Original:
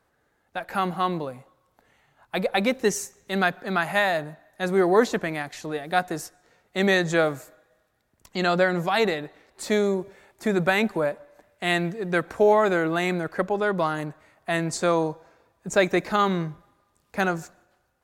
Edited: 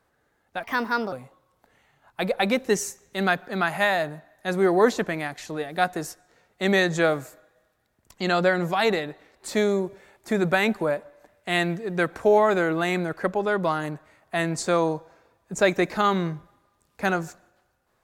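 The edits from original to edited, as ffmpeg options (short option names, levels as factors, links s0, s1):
-filter_complex "[0:a]asplit=3[s0][s1][s2];[s0]atrim=end=0.634[s3];[s1]atrim=start=0.63:end=1.27,asetpts=PTS-STARTPTS,asetrate=57330,aresample=44100[s4];[s2]atrim=start=1.266[s5];[s3][s4]acrossfade=d=0.004:c1=hsin:c2=hsin[s6];[s6][s5]acrossfade=d=0.004:c1=hsin:c2=hsin"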